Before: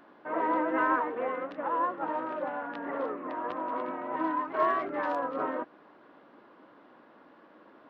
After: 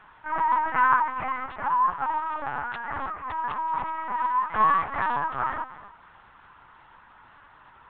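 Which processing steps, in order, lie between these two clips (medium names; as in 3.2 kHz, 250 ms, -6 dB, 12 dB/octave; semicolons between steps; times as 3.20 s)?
high-pass 820 Hz 24 dB/octave; on a send at -15.5 dB: reverberation RT60 0.60 s, pre-delay 206 ms; on the sum: LPC vocoder at 8 kHz pitch kept; trim +8 dB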